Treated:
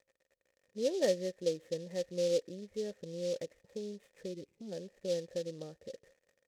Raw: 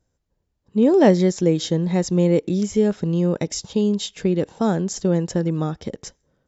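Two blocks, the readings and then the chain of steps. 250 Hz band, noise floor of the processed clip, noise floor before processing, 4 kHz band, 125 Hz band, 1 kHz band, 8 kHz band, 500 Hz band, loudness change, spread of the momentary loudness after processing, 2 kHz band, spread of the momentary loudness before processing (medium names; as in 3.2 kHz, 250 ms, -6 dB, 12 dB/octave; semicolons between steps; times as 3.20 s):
-24.5 dB, -81 dBFS, -74 dBFS, -13.0 dB, -26.5 dB, under -25 dB, no reading, -13.0 dB, -17.0 dB, 15 LU, -16.5 dB, 10 LU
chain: crackle 82 per s -28 dBFS; time-frequency box 4.33–4.72 s, 410–2000 Hz -19 dB; cascade formant filter e; delay time shaken by noise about 4.4 kHz, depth 0.051 ms; trim -7 dB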